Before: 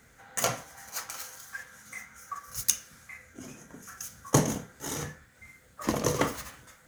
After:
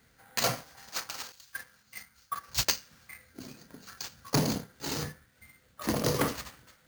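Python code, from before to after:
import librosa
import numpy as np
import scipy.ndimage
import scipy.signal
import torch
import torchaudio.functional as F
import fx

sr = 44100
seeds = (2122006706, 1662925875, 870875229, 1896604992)

y = fx.law_mismatch(x, sr, coded='A')
y = fx.low_shelf(y, sr, hz=460.0, db=9.0)
y = np.repeat(y[::4], 4)[:len(y)]
y = 10.0 ** (-18.5 / 20.0) * np.tanh(y / 10.0 ** (-18.5 / 20.0))
y = fx.tilt_eq(y, sr, slope=1.5)
y = fx.band_widen(y, sr, depth_pct=100, at=(1.32, 2.65))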